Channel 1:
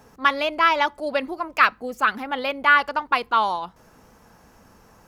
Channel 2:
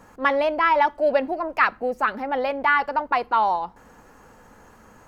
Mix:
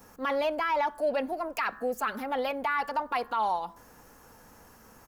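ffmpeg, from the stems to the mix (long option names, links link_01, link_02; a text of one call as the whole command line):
ffmpeg -i stem1.wav -i stem2.wav -filter_complex "[0:a]aemphasis=mode=production:type=75kf,bandreject=frequency=67.12:width_type=h:width=4,bandreject=frequency=134.24:width_type=h:width=4,bandreject=frequency=201.36:width_type=h:width=4,bandreject=frequency=268.48:width_type=h:width=4,bandreject=frequency=335.6:width_type=h:width=4,bandreject=frequency=402.72:width_type=h:width=4,bandreject=frequency=469.84:width_type=h:width=4,bandreject=frequency=536.96:width_type=h:width=4,bandreject=frequency=604.08:width_type=h:width=4,bandreject=frequency=671.2:width_type=h:width=4,bandreject=frequency=738.32:width_type=h:width=4,bandreject=frequency=805.44:width_type=h:width=4,bandreject=frequency=872.56:width_type=h:width=4,bandreject=frequency=939.68:width_type=h:width=4,bandreject=frequency=1006.8:width_type=h:width=4,bandreject=frequency=1073.92:width_type=h:width=4,bandreject=frequency=1141.04:width_type=h:width=4,bandreject=frequency=1208.16:width_type=h:width=4,bandreject=frequency=1275.28:width_type=h:width=4,bandreject=frequency=1342.4:width_type=h:width=4,bandreject=frequency=1409.52:width_type=h:width=4,bandreject=frequency=1476.64:width_type=h:width=4,bandreject=frequency=1543.76:width_type=h:width=4,bandreject=frequency=1610.88:width_type=h:width=4,bandreject=frequency=1678:width_type=h:width=4,bandreject=frequency=1745.12:width_type=h:width=4,bandreject=frequency=1812.24:width_type=h:width=4,bandreject=frequency=1879.36:width_type=h:width=4,acrusher=bits=8:mode=log:mix=0:aa=0.000001,volume=-10dB[link_01];[1:a]adelay=4.4,volume=-6dB,asplit=2[link_02][link_03];[link_03]apad=whole_len=223743[link_04];[link_01][link_04]sidechaincompress=threshold=-36dB:ratio=4:attack=35:release=131[link_05];[link_05][link_02]amix=inputs=2:normalize=0,alimiter=limit=-20dB:level=0:latency=1:release=11" out.wav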